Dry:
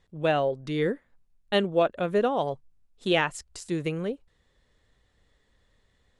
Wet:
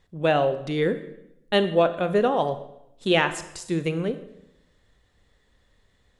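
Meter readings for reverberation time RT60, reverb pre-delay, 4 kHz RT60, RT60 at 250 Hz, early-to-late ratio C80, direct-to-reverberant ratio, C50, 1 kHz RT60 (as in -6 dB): 0.85 s, 26 ms, 0.75 s, 0.95 s, 15.0 dB, 10.5 dB, 13.0 dB, 0.80 s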